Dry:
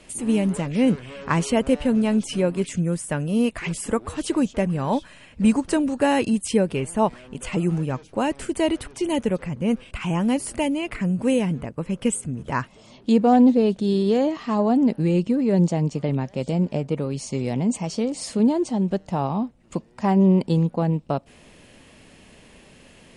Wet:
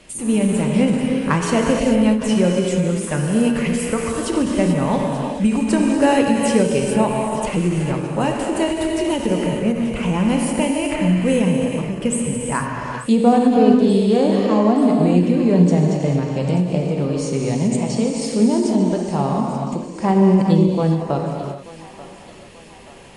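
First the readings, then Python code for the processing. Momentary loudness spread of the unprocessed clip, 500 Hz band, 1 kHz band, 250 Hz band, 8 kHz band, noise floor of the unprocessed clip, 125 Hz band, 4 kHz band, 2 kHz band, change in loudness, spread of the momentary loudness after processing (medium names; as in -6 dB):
8 LU, +5.0 dB, +4.5 dB, +4.5 dB, +5.0 dB, -51 dBFS, +5.0 dB, +5.0 dB, +5.0 dB, +4.5 dB, 8 LU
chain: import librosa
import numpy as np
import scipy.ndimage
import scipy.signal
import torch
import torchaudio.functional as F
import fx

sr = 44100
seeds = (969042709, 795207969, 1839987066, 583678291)

p1 = x + fx.echo_thinned(x, sr, ms=885, feedback_pct=67, hz=580.0, wet_db=-15.0, dry=0)
p2 = fx.rev_gated(p1, sr, seeds[0], gate_ms=470, shape='flat', drr_db=-0.5)
p3 = fx.end_taper(p2, sr, db_per_s=110.0)
y = p3 * librosa.db_to_amplitude(2.0)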